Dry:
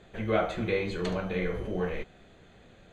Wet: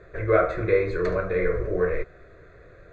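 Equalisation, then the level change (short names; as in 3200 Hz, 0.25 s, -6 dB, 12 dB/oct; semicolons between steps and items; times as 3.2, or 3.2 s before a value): LPF 3200 Hz 12 dB/oct; fixed phaser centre 830 Hz, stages 6; +9.0 dB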